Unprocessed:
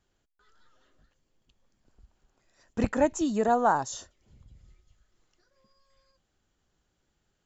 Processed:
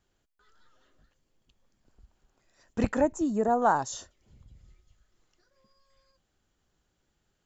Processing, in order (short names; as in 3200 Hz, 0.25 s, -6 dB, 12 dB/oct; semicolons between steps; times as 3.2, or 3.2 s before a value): 3.01–3.62 bell 3400 Hz -14 dB 1.8 oct